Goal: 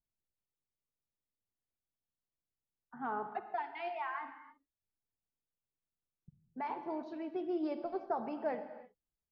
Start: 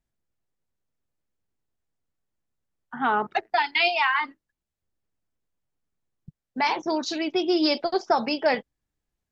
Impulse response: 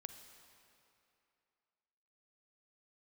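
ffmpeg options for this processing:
-filter_complex "[0:a]lowpass=1.2k[a];[1:a]atrim=start_sample=2205,afade=t=out:st=0.38:d=0.01,atrim=end_sample=17199[b];[a][b]afir=irnorm=-1:irlink=0,volume=-8dB"

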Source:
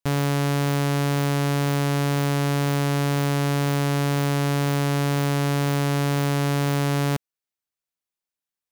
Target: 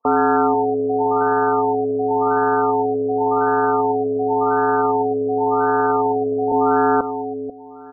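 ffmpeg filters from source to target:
-filter_complex "[0:a]aecho=1:1:4.9:0.9,asetrate=48510,aresample=44100,asplit=2[a][b];[b]adelay=490,lowpass=f=2.3k:p=1,volume=-3.5dB,asplit=2[c][d];[d]adelay=490,lowpass=f=2.3k:p=1,volume=0.23,asplit=2[e][f];[f]adelay=490,lowpass=f=2.3k:p=1,volume=0.23[g];[a][c][e][g]amix=inputs=4:normalize=0,highpass=f=570:t=q:w=0.5412,highpass=f=570:t=q:w=1.307,lowpass=f=3.3k:t=q:w=0.5176,lowpass=f=3.3k:t=q:w=0.7071,lowpass=f=3.3k:t=q:w=1.932,afreqshift=-200,alimiter=level_in=28.5dB:limit=-1dB:release=50:level=0:latency=1,afftfilt=real='re*lt(b*sr/1024,700*pow(1800/700,0.5+0.5*sin(2*PI*0.91*pts/sr)))':imag='im*lt(b*sr/1024,700*pow(1800/700,0.5+0.5*sin(2*PI*0.91*pts/sr)))':win_size=1024:overlap=0.75,volume=-6.5dB"

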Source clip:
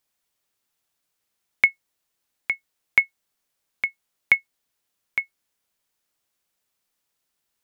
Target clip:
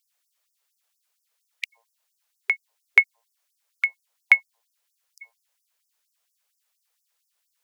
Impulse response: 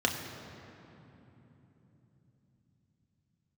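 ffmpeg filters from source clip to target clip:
-af "bandreject=f=115.7:t=h:w=4,bandreject=f=231.4:t=h:w=4,bandreject=f=347.1:t=h:w=4,bandreject=f=462.8:t=h:w=4,bandreject=f=578.5:t=h:w=4,bandreject=f=694.2:t=h:w=4,bandreject=f=809.9:t=h:w=4,bandreject=f=925.6:t=h:w=4,bandreject=f=1.0413k:t=h:w=4,afftfilt=real='re*gte(b*sr/1024,390*pow(5100/390,0.5+0.5*sin(2*PI*4.3*pts/sr)))':imag='im*gte(b*sr/1024,390*pow(5100/390,0.5+0.5*sin(2*PI*4.3*pts/sr)))':win_size=1024:overlap=0.75,volume=2.5dB"

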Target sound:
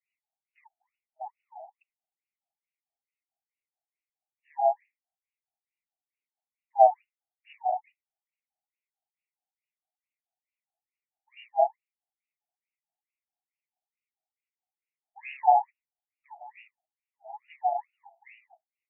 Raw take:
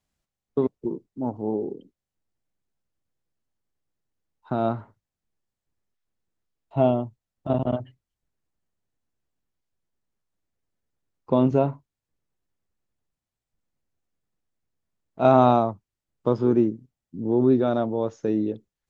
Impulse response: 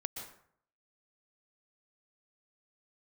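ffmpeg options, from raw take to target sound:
-filter_complex "[0:a]asplit=3[a][b][c];[b]asetrate=37084,aresample=44100,atempo=1.18921,volume=-6dB[d];[c]asetrate=52444,aresample=44100,atempo=0.840896,volume=-1dB[e];[a][d][e]amix=inputs=3:normalize=0,asuperstop=centerf=1300:order=12:qfactor=1.1,afftfilt=real='re*between(b*sr/1024,880*pow(2100/880,0.5+0.5*sin(2*PI*2.3*pts/sr))/1.41,880*pow(2100/880,0.5+0.5*sin(2*PI*2.3*pts/sr))*1.41)':imag='im*between(b*sr/1024,880*pow(2100/880,0.5+0.5*sin(2*PI*2.3*pts/sr))/1.41,880*pow(2100/880,0.5+0.5*sin(2*PI*2.3*pts/sr))*1.41)':win_size=1024:overlap=0.75,volume=3dB"

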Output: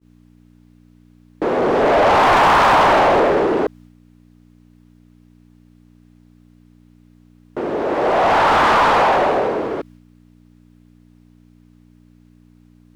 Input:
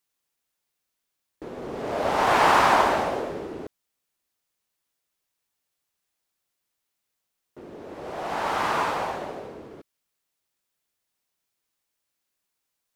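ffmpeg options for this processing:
-filter_complex "[0:a]aeval=exprs='val(0)+0.00178*(sin(2*PI*60*n/s)+sin(2*PI*2*60*n/s)/2+sin(2*PI*3*60*n/s)/3+sin(2*PI*4*60*n/s)/4+sin(2*PI*5*60*n/s)/5)':c=same,asplit=2[a][b];[b]highpass=f=720:p=1,volume=29dB,asoftclip=type=tanh:threshold=-7dB[c];[a][c]amix=inputs=2:normalize=0,lowpass=f=1.2k:p=1,volume=-6dB,agate=range=-33dB:threshold=-43dB:ratio=3:detection=peak,asplit=2[d][e];[e]asoftclip=type=tanh:threshold=-17.5dB,volume=-3.5dB[f];[d][f]amix=inputs=2:normalize=0"

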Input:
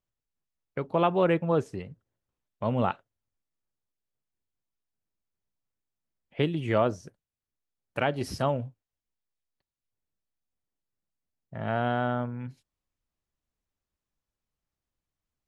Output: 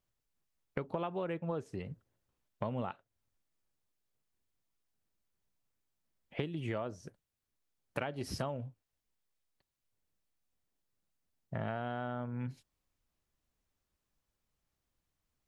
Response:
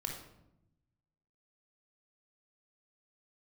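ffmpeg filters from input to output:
-af "acompressor=threshold=-37dB:ratio=12,volume=3.5dB"

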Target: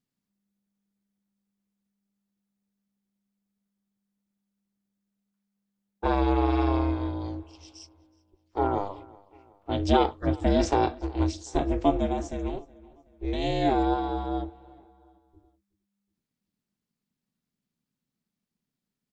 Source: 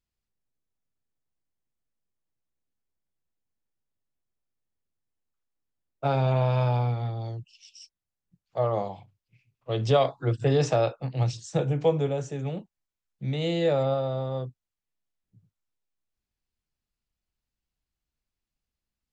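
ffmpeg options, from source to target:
-filter_complex "[0:a]bandreject=f=2.7k:w=17,aeval=exprs='val(0)*sin(2*PI*200*n/s)':c=same,asplit=2[a][b];[b]adelay=371,lowpass=f=4.7k:p=1,volume=-23dB,asplit=2[c][d];[d]adelay=371,lowpass=f=4.7k:p=1,volume=0.47,asplit=2[e][f];[f]adelay=371,lowpass=f=4.7k:p=1,volume=0.47[g];[a][c][e][g]amix=inputs=4:normalize=0,volume=3dB"

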